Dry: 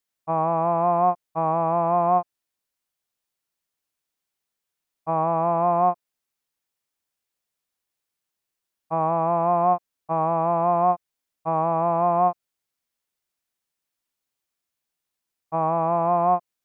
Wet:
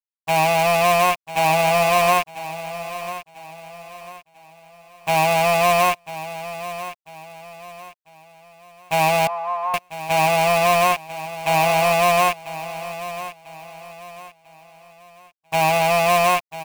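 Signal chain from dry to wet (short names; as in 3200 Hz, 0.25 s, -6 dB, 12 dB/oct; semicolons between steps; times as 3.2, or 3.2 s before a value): rattling part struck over -44 dBFS, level -16 dBFS; comb 7.5 ms, depth 94%; companded quantiser 4-bit; 9.27–9.74 band-pass 950 Hz, Q 5; feedback echo 0.995 s, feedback 37%, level -13.5 dB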